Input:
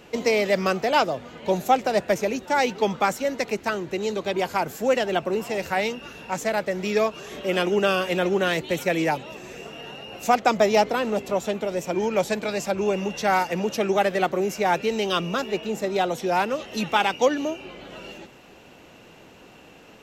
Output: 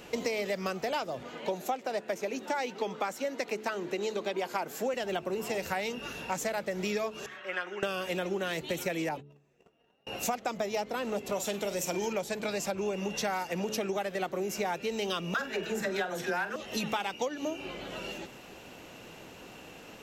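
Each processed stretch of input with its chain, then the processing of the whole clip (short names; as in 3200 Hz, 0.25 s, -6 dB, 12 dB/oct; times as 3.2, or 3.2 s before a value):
1.23–4.94 HPF 230 Hz + high shelf 5900 Hz -6.5 dB
7.26–7.83 band-pass 1600 Hz, Q 2.9 + comb 5.4 ms, depth 69%
9.09–10.07 gate -35 dBFS, range -31 dB + high shelf 2200 Hz -9.5 dB
11.32–12.13 high shelf 3000 Hz +10 dB + doubler 45 ms -12 dB
15.34–16.56 bell 1600 Hz +15 dB 0.43 oct + dispersion lows, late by 68 ms, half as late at 430 Hz + flutter echo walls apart 7.7 m, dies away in 0.22 s
whole clip: high shelf 5800 Hz +5.5 dB; de-hum 71.83 Hz, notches 6; compressor 10:1, threshold -29 dBFS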